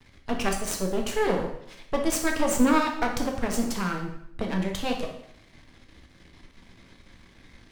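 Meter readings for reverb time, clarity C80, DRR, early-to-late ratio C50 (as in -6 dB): 0.70 s, 9.5 dB, 1.5 dB, 6.0 dB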